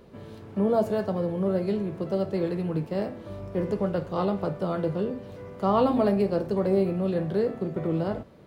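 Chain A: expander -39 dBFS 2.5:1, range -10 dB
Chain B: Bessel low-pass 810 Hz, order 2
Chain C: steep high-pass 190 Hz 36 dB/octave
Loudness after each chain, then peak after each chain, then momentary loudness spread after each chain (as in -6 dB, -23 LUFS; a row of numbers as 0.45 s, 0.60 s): -27.0 LUFS, -28.0 LUFS, -28.0 LUFS; -11.0 dBFS, -13.0 dBFS, -12.0 dBFS; 9 LU, 9 LU, 9 LU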